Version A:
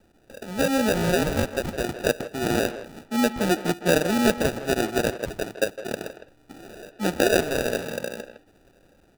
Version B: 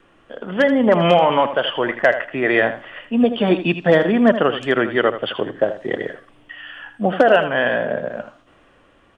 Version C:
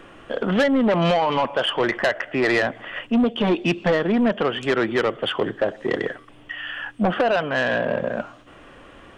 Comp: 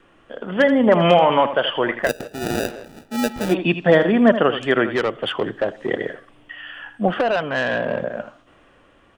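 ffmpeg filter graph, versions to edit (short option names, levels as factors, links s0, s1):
-filter_complex "[2:a]asplit=2[s0][s1];[1:a]asplit=4[s2][s3][s4][s5];[s2]atrim=end=2.11[s6];[0:a]atrim=start=2.01:end=3.56[s7];[s3]atrim=start=3.46:end=4.942[s8];[s0]atrim=start=4.938:end=5.912[s9];[s4]atrim=start=5.908:end=7.082[s10];[s1]atrim=start=7.078:end=8.042[s11];[s5]atrim=start=8.038[s12];[s6][s7]acrossfade=d=0.1:c1=tri:c2=tri[s13];[s13][s8]acrossfade=d=0.1:c1=tri:c2=tri[s14];[s14][s9]acrossfade=d=0.004:c1=hsin:c2=hsin[s15];[s15][s10]acrossfade=d=0.004:c1=hsin:c2=hsin[s16];[s16][s11]acrossfade=d=0.004:c1=hsin:c2=hsin[s17];[s17][s12]acrossfade=d=0.004:c1=hsin:c2=hsin"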